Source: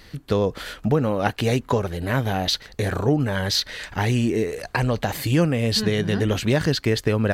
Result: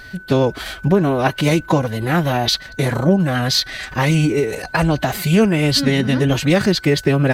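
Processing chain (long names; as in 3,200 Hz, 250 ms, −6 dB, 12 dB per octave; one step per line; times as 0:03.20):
phase-vocoder pitch shift with formants kept +4.5 semitones
steady tone 1,500 Hz −42 dBFS
level +5.5 dB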